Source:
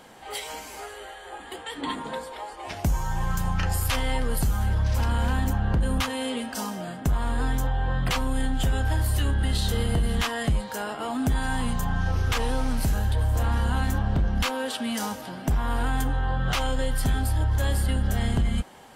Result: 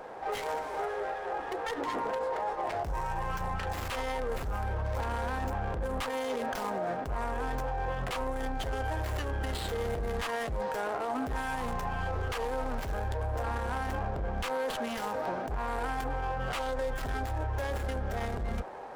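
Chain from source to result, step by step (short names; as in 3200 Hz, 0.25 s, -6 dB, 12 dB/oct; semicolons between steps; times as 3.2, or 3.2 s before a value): Wiener smoothing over 15 samples; resonant low shelf 320 Hz -10 dB, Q 1.5; in parallel at +2 dB: negative-ratio compressor -38 dBFS, ratio -1; on the sum: limiter -20.5 dBFS, peak gain reduction 9.5 dB; running maximum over 5 samples; gain -3.5 dB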